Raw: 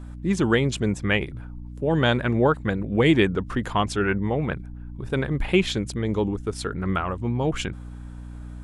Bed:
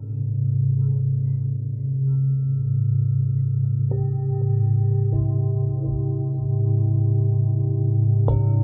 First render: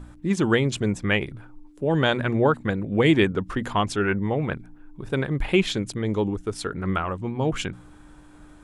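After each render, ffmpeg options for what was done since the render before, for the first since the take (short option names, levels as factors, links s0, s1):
-af "bandreject=f=60:t=h:w=4,bandreject=f=120:t=h:w=4,bandreject=f=180:t=h:w=4,bandreject=f=240:t=h:w=4"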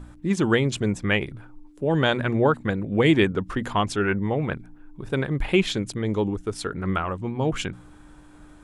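-af anull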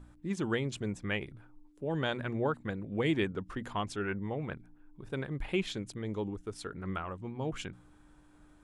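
-af "volume=0.266"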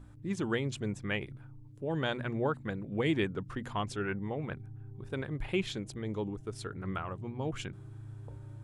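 -filter_complex "[1:a]volume=0.0422[s0];[0:a][s0]amix=inputs=2:normalize=0"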